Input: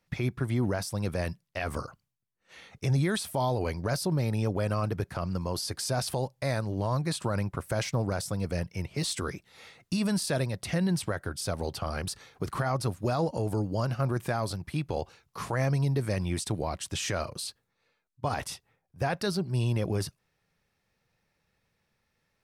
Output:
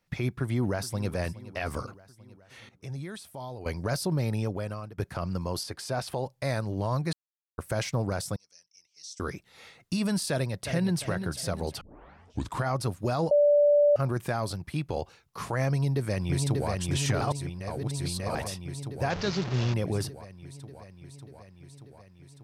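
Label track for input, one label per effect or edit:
0.390000	1.110000	delay throw 420 ms, feedback 65%, level −16.5 dB
2.690000	3.660000	clip gain −11.5 dB
4.320000	4.980000	fade out, to −20 dB
5.630000	6.260000	bass and treble bass −4 dB, treble −8 dB
7.130000	7.580000	silence
8.360000	9.200000	resonant band-pass 5,800 Hz, Q 8.4
10.310000	11.010000	delay throw 350 ms, feedback 40%, level −8 dB
11.810000	11.810000	tape start 0.83 s
13.310000	13.960000	beep over 584 Hz −17 dBFS
15.700000	16.700000	delay throw 590 ms, feedback 75%, level −2.5 dB
17.210000	18.350000	reverse
19.100000	19.740000	linear delta modulator 32 kbit/s, step −29 dBFS

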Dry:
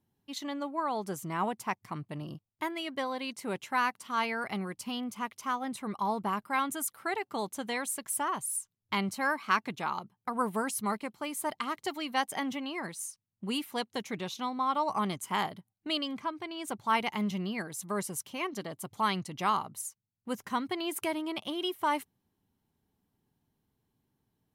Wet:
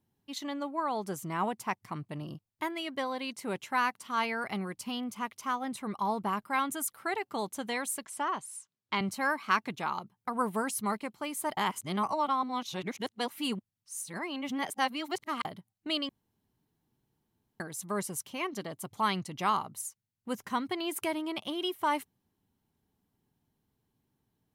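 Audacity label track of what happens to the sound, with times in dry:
8.050000	9.010000	band-pass filter 200–6,000 Hz
11.570000	15.450000	reverse
16.090000	17.600000	fill with room tone

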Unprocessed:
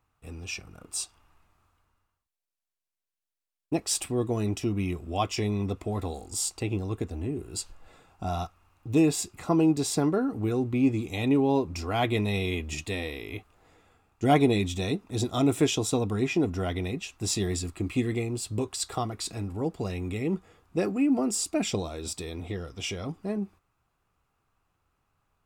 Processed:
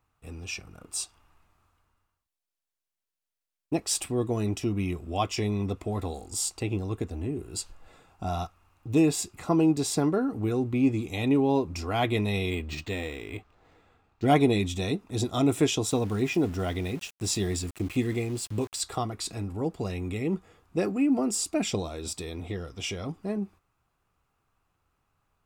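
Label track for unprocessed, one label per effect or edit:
12.500000	14.280000	linearly interpolated sample-rate reduction rate divided by 4×
15.870000	18.810000	centre clipping without the shift under −42 dBFS

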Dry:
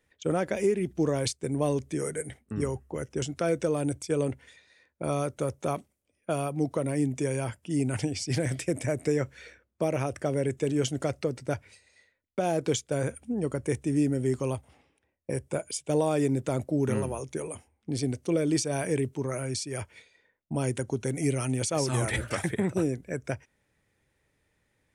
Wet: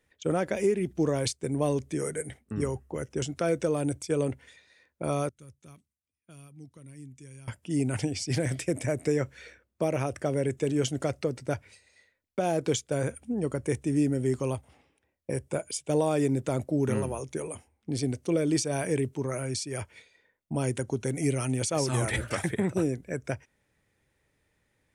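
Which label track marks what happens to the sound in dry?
5.290000	7.480000	guitar amp tone stack bass-middle-treble 6-0-2

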